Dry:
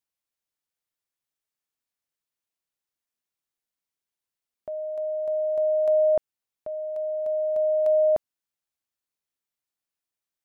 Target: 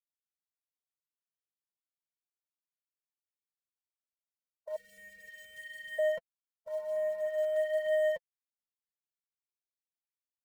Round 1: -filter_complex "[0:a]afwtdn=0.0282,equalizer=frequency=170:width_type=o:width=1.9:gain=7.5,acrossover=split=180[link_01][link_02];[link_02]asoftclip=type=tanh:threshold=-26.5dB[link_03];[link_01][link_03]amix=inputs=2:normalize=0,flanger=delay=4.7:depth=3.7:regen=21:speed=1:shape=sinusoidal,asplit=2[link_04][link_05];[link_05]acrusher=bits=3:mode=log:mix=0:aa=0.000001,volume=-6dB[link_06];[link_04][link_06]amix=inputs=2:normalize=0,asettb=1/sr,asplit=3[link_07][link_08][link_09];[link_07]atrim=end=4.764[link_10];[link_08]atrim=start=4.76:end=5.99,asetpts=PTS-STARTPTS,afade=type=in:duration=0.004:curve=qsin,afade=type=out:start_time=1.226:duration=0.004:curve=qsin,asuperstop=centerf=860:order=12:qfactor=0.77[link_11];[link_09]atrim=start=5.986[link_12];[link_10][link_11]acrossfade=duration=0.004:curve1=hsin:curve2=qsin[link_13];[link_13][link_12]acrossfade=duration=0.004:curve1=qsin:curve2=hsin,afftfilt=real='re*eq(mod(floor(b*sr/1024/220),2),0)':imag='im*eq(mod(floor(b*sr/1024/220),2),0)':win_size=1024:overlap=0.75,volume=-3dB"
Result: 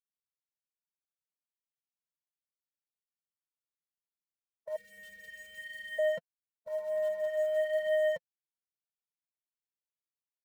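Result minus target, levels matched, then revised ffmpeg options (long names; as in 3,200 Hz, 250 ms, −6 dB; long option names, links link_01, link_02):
125 Hz band +5.5 dB
-filter_complex "[0:a]afwtdn=0.0282,equalizer=frequency=170:width_type=o:width=1.9:gain=-2,acrossover=split=180[link_01][link_02];[link_02]asoftclip=type=tanh:threshold=-26.5dB[link_03];[link_01][link_03]amix=inputs=2:normalize=0,flanger=delay=4.7:depth=3.7:regen=21:speed=1:shape=sinusoidal,asplit=2[link_04][link_05];[link_05]acrusher=bits=3:mode=log:mix=0:aa=0.000001,volume=-6dB[link_06];[link_04][link_06]amix=inputs=2:normalize=0,asettb=1/sr,asplit=3[link_07][link_08][link_09];[link_07]atrim=end=4.764[link_10];[link_08]atrim=start=4.76:end=5.99,asetpts=PTS-STARTPTS,afade=type=in:duration=0.004:curve=qsin,afade=type=out:start_time=1.226:duration=0.004:curve=qsin,asuperstop=centerf=860:order=12:qfactor=0.77[link_11];[link_09]atrim=start=5.986[link_12];[link_10][link_11]acrossfade=duration=0.004:curve1=hsin:curve2=qsin[link_13];[link_13][link_12]acrossfade=duration=0.004:curve1=qsin:curve2=hsin,afftfilt=real='re*eq(mod(floor(b*sr/1024/220),2),0)':imag='im*eq(mod(floor(b*sr/1024/220),2),0)':win_size=1024:overlap=0.75,volume=-3dB"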